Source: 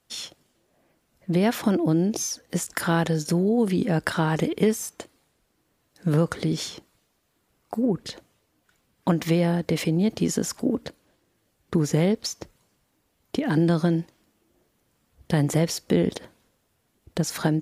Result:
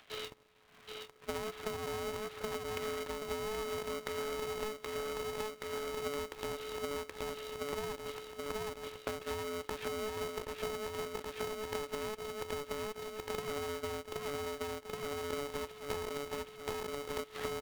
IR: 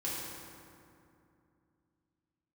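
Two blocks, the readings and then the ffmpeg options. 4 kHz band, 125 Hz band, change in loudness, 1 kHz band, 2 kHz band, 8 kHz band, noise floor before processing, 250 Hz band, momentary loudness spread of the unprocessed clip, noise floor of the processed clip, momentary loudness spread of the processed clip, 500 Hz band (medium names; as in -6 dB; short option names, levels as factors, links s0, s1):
-8.0 dB, -25.0 dB, -15.0 dB, -7.5 dB, -9.0 dB, -14.0 dB, -71 dBFS, -23.5 dB, 13 LU, -58 dBFS, 4 LU, -9.0 dB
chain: -filter_complex "[0:a]aresample=8000,aeval=exprs='max(val(0),0)':c=same,aresample=44100,aecho=1:1:775|1550|2325|3100|3875|4650:0.562|0.276|0.135|0.0662|0.0324|0.0159,acrossover=split=890[s0][s1];[s1]acompressor=mode=upward:threshold=0.00398:ratio=2.5[s2];[s0][s2]amix=inputs=2:normalize=0,aecho=1:1:1.8:0.39,acompressor=threshold=0.0158:ratio=12,aeval=exprs='val(0)*sgn(sin(2*PI*430*n/s))':c=same"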